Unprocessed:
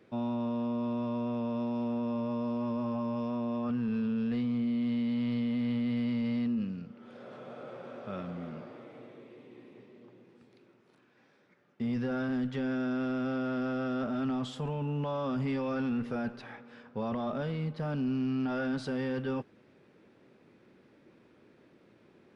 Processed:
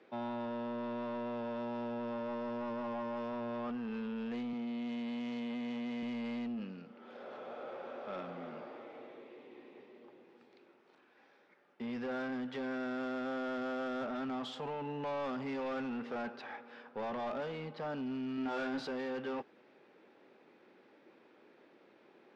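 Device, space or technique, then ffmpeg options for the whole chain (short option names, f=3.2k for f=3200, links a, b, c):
intercom: -filter_complex "[0:a]highpass=340,lowpass=4.8k,equalizer=f=820:t=o:w=0.22:g=5,asoftclip=type=tanh:threshold=-34.5dB,asettb=1/sr,asplit=3[a][b][c];[a]atrim=end=4.534[d];[b]atrim=start=4.53:end=6.03,asetpts=PTS-STARTPTS,afade=t=in:d=0.004:c=qsin,afade=t=out:st=1.496:d=0.004:c=qsin,highpass=140[e];[c]atrim=start=6.026[f];[d][e]acrossfade=d=0.004:c1=hsin:c2=qsin[g];[g][f]acrossfade=d=0.004:c1=qsin:c2=hsin,asettb=1/sr,asplit=3[h][i][j];[h]atrim=end=18.354[k];[i]atrim=start=18.35:end=18.87,asetpts=PTS-STARTPTS,afade=t=in:d=0.004:c=qsin,afade=t=out:st=0.516:d=0.004:c=qsin,asplit=2[l][m];[m]adelay=26,volume=-4.5dB[n];[l][n]amix=inputs=2:normalize=0,atrim=end_sample=22932[o];[j]atrim=start=18.866[p];[k][o]acrossfade=d=0.004:c1=hsin:c2=qsin[q];[q][p]acrossfade=d=0.004:c1=qsin:c2=hsin,volume=1dB"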